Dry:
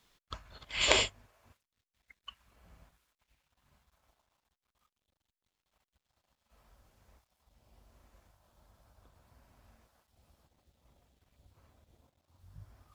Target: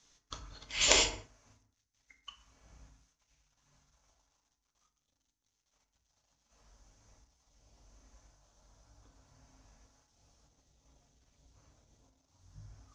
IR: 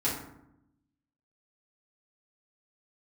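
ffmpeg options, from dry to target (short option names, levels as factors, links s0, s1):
-filter_complex "[0:a]lowpass=f=6200:t=q:w=7,equalizer=f=75:t=o:w=0.37:g=-10,asplit=2[s0][s1];[1:a]atrim=start_sample=2205,afade=t=out:st=0.28:d=0.01,atrim=end_sample=12789,lowshelf=f=61:g=10[s2];[s1][s2]afir=irnorm=-1:irlink=0,volume=0.335[s3];[s0][s3]amix=inputs=2:normalize=0,volume=0.531"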